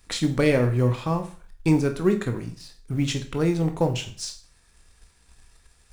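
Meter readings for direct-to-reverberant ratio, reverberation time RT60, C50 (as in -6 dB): 6.0 dB, 0.45 s, 12.5 dB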